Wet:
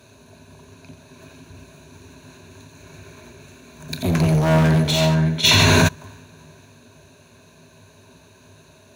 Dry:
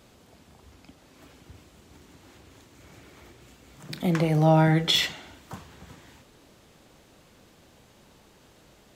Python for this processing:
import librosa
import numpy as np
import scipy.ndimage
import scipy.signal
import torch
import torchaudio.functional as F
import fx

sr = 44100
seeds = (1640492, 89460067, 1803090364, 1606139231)

p1 = fx.octave_divider(x, sr, octaves=1, level_db=0.0)
p2 = scipy.signal.sosfilt(scipy.signal.butter(4, 75.0, 'highpass', fs=sr, output='sos'), p1)
p3 = fx.rider(p2, sr, range_db=10, speed_s=2.0)
p4 = fx.ripple_eq(p3, sr, per_octave=1.5, db=13)
p5 = p4 + 10.0 ** (-6.5 / 20.0) * np.pad(p4, (int(504 * sr / 1000.0), 0))[:len(p4)]
p6 = np.clip(p5, -10.0 ** (-17.5 / 20.0), 10.0 ** (-17.5 / 20.0))
p7 = fx.high_shelf(p6, sr, hz=4900.0, db=8.0, at=(3.88, 4.83))
p8 = p7 + fx.echo_single(p7, sr, ms=88, db=-9.0, dry=0)
p9 = fx.env_flatten(p8, sr, amount_pct=100, at=(5.43, 5.87), fade=0.02)
y = p9 * 10.0 ** (2.5 / 20.0)